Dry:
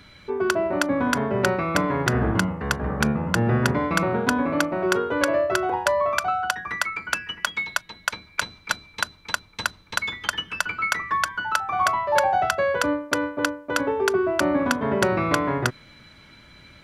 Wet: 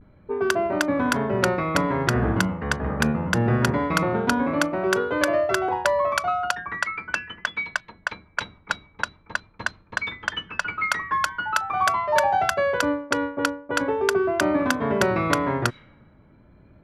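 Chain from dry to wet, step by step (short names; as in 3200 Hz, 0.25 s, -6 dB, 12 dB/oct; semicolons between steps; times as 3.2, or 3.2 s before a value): vibrato 0.43 Hz 51 cents; low-pass opened by the level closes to 630 Hz, open at -18 dBFS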